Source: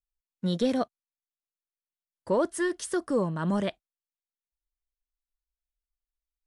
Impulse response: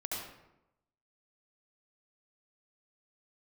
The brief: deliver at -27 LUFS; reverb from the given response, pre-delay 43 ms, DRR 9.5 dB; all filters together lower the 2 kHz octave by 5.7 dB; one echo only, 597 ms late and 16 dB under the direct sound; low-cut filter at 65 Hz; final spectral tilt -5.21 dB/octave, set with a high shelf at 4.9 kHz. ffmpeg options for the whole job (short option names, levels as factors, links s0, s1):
-filter_complex "[0:a]highpass=65,equalizer=f=2000:t=o:g=-8.5,highshelf=f=4900:g=8,aecho=1:1:597:0.158,asplit=2[s0][s1];[1:a]atrim=start_sample=2205,adelay=43[s2];[s1][s2]afir=irnorm=-1:irlink=0,volume=0.251[s3];[s0][s3]amix=inputs=2:normalize=0,volume=1.26"